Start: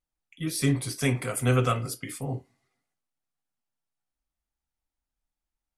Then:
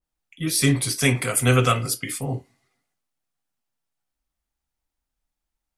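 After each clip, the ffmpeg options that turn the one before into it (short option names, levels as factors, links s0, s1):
-af "adynamicequalizer=threshold=0.00708:dfrequency=1600:dqfactor=0.7:tfrequency=1600:tqfactor=0.7:attack=5:release=100:ratio=0.375:range=3:mode=boostabove:tftype=highshelf,volume=1.68"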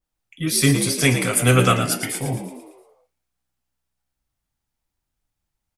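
-filter_complex "[0:a]asplit=7[s0][s1][s2][s3][s4][s5][s6];[s1]adelay=113,afreqshift=63,volume=0.355[s7];[s2]adelay=226,afreqshift=126,volume=0.182[s8];[s3]adelay=339,afreqshift=189,volume=0.0923[s9];[s4]adelay=452,afreqshift=252,volume=0.0473[s10];[s5]adelay=565,afreqshift=315,volume=0.024[s11];[s6]adelay=678,afreqshift=378,volume=0.0123[s12];[s0][s7][s8][s9][s10][s11][s12]amix=inputs=7:normalize=0,volume=1.26"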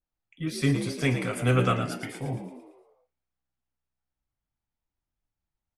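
-af "aemphasis=mode=reproduction:type=75fm,volume=0.422"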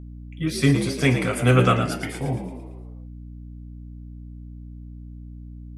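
-af "aeval=exprs='val(0)+0.00708*(sin(2*PI*60*n/s)+sin(2*PI*2*60*n/s)/2+sin(2*PI*3*60*n/s)/3+sin(2*PI*4*60*n/s)/4+sin(2*PI*5*60*n/s)/5)':c=same,volume=2"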